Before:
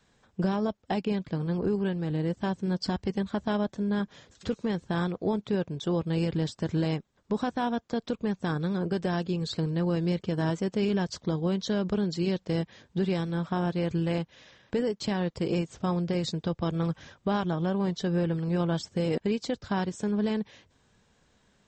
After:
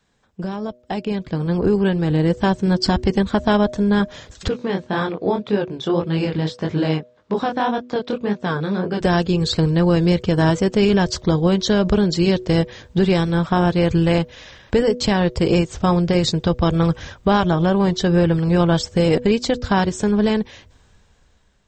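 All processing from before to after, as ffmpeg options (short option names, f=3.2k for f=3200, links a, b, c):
-filter_complex "[0:a]asettb=1/sr,asplit=3[a][b][c];[a]atrim=end=4.484[d];[b]atrim=start=4.48:end=9.01,asetpts=PTS-STARTPTS,afade=t=in:d=0.004:c=qsin,afade=t=out:st=4.526:d=0.004:c=qsin,flanger=delay=19:depth=7.2:speed=1.8,highpass=160,lowpass=4.4k[e];[c]atrim=start=9.006[f];[d][e]acrossfade=d=0.004:c1=hsin:c2=qsin[g];[g][f]acrossfade=d=0.004:c1=qsin:c2=hsin,bandreject=f=122.8:t=h:w=4,bandreject=f=245.6:t=h:w=4,bandreject=f=368.4:t=h:w=4,bandreject=f=491.2:t=h:w=4,bandreject=f=614:t=h:w=4,asubboost=boost=4:cutoff=82,dynaudnorm=f=390:g=7:m=13.5dB"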